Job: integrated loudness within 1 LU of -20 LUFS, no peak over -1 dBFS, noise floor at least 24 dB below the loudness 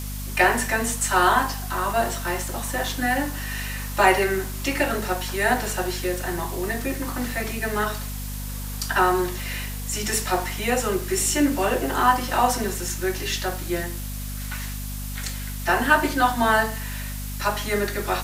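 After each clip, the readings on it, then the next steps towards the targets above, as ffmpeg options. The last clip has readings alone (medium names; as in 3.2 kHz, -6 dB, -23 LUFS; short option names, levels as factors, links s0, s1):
hum 50 Hz; highest harmonic 250 Hz; hum level -29 dBFS; noise floor -31 dBFS; noise floor target -48 dBFS; loudness -24.0 LUFS; peak level -3.5 dBFS; loudness target -20.0 LUFS
-> -af "bandreject=f=50:t=h:w=4,bandreject=f=100:t=h:w=4,bandreject=f=150:t=h:w=4,bandreject=f=200:t=h:w=4,bandreject=f=250:t=h:w=4"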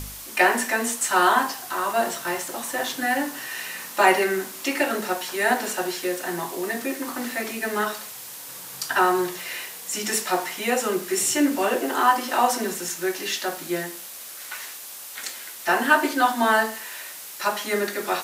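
hum not found; noise floor -39 dBFS; noise floor target -48 dBFS
-> -af "afftdn=nr=9:nf=-39"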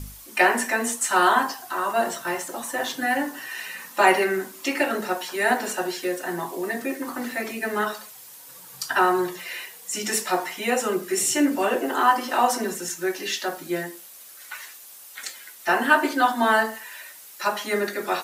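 noise floor -45 dBFS; noise floor target -48 dBFS
-> -af "afftdn=nr=6:nf=-45"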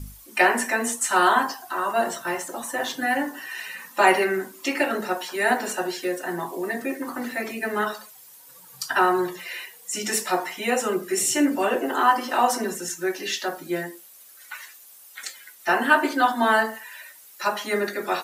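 noise floor -49 dBFS; loudness -24.0 LUFS; peak level -4.0 dBFS; loudness target -20.0 LUFS
-> -af "volume=1.58,alimiter=limit=0.891:level=0:latency=1"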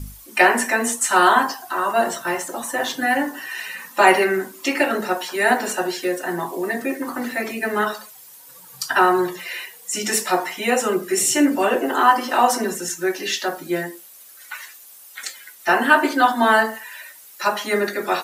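loudness -20.0 LUFS; peak level -1.0 dBFS; noise floor -45 dBFS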